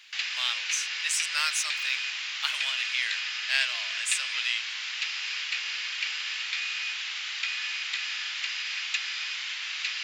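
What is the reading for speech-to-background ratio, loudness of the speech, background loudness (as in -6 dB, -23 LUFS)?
0.0 dB, -30.0 LUFS, -30.0 LUFS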